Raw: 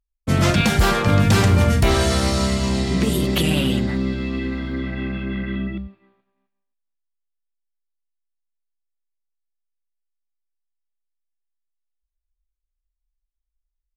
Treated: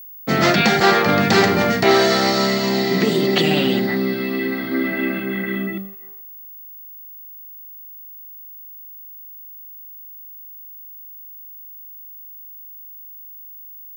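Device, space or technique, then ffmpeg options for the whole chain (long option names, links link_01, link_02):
old television with a line whistle: -filter_complex "[0:a]equalizer=frequency=1200:width_type=o:width=0.77:gain=-3.5,asettb=1/sr,asplit=3[link_01][link_02][link_03];[link_01]atrim=end=4.704[link_04];[link_02]atrim=start=4.7:end=5.2,asetpts=PTS-STARTPTS,afade=type=in:duration=0.004:curve=qsin,afade=type=out:start_time=0.496:duration=0.004:curve=qsin,asplit=2[link_05][link_06];[link_06]adelay=12,volume=-2dB[link_07];[link_05][link_07]amix=inputs=2:normalize=0,atrim=end_sample=22050[link_08];[link_03]atrim=start=5.196[link_09];[link_04][link_08]acrossfade=duration=0.004:curve1=hsin:curve2=qsin[link_10];[link_10][link_09]acrossfade=duration=0.004:curve1=qsin:curve2=hsin,highpass=frequency=160:width=0.5412,highpass=frequency=160:width=1.3066,equalizer=frequency=400:width_type=q:width=4:gain=7,equalizer=frequency=760:width_type=q:width=4:gain=9,equalizer=frequency=1300:width_type=q:width=4:gain=7,equalizer=frequency=1900:width_type=q:width=4:gain=9,equalizer=frequency=4400:width_type=q:width=4:gain=7,lowpass=frequency=6700:width=0.5412,lowpass=frequency=6700:width=1.3066,aeval=exprs='val(0)+0.0141*sin(2*PI*15625*n/s)':channel_layout=same,volume=1dB"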